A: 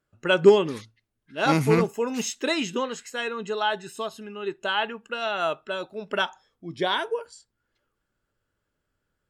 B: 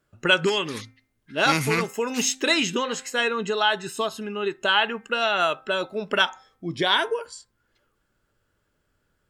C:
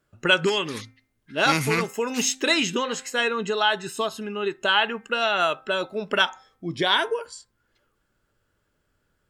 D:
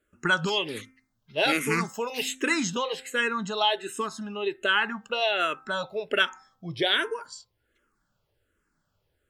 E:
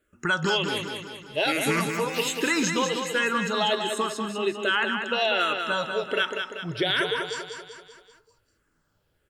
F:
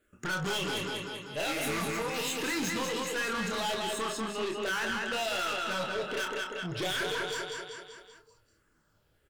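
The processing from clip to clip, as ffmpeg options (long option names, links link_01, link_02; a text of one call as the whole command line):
ffmpeg -i in.wav -filter_complex "[0:a]acrossover=split=1300[link_01][link_02];[link_01]acompressor=threshold=-30dB:ratio=6[link_03];[link_03][link_02]amix=inputs=2:normalize=0,bandreject=frequency=261.3:width_type=h:width=4,bandreject=frequency=522.6:width_type=h:width=4,bandreject=frequency=783.9:width_type=h:width=4,bandreject=frequency=1045.2:width_type=h:width=4,bandreject=frequency=1306.5:width_type=h:width=4,bandreject=frequency=1567.8:width_type=h:width=4,bandreject=frequency=1829.1:width_type=h:width=4,bandreject=frequency=2090.4:width_type=h:width=4,bandreject=frequency=2351.7:width_type=h:width=4,volume=7dB" out.wav
ffmpeg -i in.wav -af anull out.wav
ffmpeg -i in.wav -filter_complex "[0:a]asplit=2[link_01][link_02];[link_02]afreqshift=-1.3[link_03];[link_01][link_03]amix=inputs=2:normalize=1" out.wav
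ffmpeg -i in.wav -af "alimiter=limit=-17dB:level=0:latency=1:release=62,aecho=1:1:193|386|579|772|965|1158:0.501|0.261|0.136|0.0705|0.0366|0.0191,volume=2.5dB" out.wav
ffmpeg -i in.wav -filter_complex "[0:a]aeval=exprs='(tanh(35.5*val(0)+0.1)-tanh(0.1))/35.5':channel_layout=same,asplit=2[link_01][link_02];[link_02]adelay=27,volume=-5.5dB[link_03];[link_01][link_03]amix=inputs=2:normalize=0" out.wav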